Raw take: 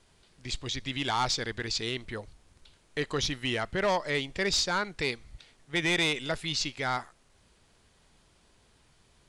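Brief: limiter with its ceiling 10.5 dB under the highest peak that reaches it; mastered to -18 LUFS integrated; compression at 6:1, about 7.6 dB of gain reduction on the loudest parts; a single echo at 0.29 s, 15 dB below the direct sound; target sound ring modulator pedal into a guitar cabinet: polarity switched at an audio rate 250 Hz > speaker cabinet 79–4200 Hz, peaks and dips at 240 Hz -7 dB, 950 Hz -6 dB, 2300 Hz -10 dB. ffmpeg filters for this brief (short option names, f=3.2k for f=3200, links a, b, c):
-af "acompressor=threshold=-32dB:ratio=6,alimiter=level_in=9dB:limit=-24dB:level=0:latency=1,volume=-9dB,aecho=1:1:290:0.178,aeval=exprs='val(0)*sgn(sin(2*PI*250*n/s))':c=same,highpass=79,equalizer=f=240:t=q:w=4:g=-7,equalizer=f=950:t=q:w=4:g=-6,equalizer=f=2.3k:t=q:w=4:g=-10,lowpass=f=4.2k:w=0.5412,lowpass=f=4.2k:w=1.3066,volume=26.5dB"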